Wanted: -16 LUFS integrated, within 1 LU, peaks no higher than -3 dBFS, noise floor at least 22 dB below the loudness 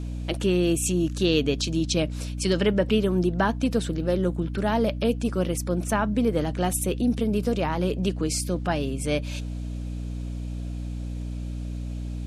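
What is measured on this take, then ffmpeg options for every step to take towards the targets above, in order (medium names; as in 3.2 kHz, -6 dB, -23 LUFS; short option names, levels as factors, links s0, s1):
hum 60 Hz; highest harmonic 300 Hz; hum level -29 dBFS; loudness -26.0 LUFS; peak level -9.5 dBFS; loudness target -16.0 LUFS
-> -af "bandreject=f=60:t=h:w=4,bandreject=f=120:t=h:w=4,bandreject=f=180:t=h:w=4,bandreject=f=240:t=h:w=4,bandreject=f=300:t=h:w=4"
-af "volume=3.16,alimiter=limit=0.708:level=0:latency=1"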